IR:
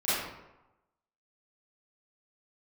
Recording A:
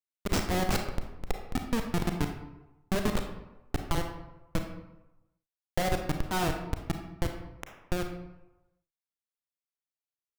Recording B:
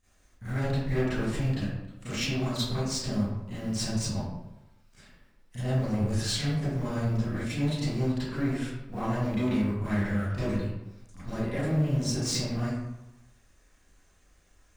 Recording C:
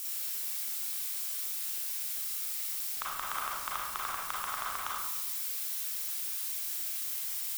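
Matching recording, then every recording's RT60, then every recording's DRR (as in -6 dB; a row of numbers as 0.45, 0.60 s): B; 1.0, 1.0, 1.0 s; 4.0, -15.0, -5.5 dB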